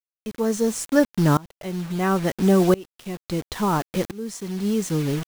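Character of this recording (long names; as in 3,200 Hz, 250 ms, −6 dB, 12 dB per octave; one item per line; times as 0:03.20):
a quantiser's noise floor 6 bits, dither none
tremolo saw up 0.73 Hz, depth 95%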